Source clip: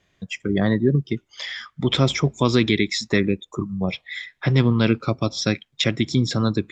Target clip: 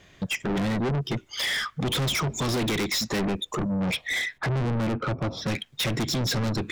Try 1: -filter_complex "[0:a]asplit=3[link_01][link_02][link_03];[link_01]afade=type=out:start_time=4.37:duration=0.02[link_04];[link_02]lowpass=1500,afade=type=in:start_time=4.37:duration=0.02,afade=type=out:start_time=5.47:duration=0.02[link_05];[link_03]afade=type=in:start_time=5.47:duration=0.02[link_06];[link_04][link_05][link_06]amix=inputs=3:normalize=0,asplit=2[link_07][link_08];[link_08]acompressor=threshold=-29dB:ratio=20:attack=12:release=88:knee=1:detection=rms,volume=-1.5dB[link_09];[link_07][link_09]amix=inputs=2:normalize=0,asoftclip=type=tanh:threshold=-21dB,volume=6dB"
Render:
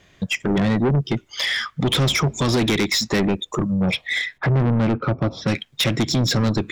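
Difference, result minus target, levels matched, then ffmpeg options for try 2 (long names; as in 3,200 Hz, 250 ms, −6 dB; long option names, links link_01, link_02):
soft clipping: distortion −4 dB
-filter_complex "[0:a]asplit=3[link_01][link_02][link_03];[link_01]afade=type=out:start_time=4.37:duration=0.02[link_04];[link_02]lowpass=1500,afade=type=in:start_time=4.37:duration=0.02,afade=type=out:start_time=5.47:duration=0.02[link_05];[link_03]afade=type=in:start_time=5.47:duration=0.02[link_06];[link_04][link_05][link_06]amix=inputs=3:normalize=0,asplit=2[link_07][link_08];[link_08]acompressor=threshold=-29dB:ratio=20:attack=12:release=88:knee=1:detection=rms,volume=-1.5dB[link_09];[link_07][link_09]amix=inputs=2:normalize=0,asoftclip=type=tanh:threshold=-30dB,volume=6dB"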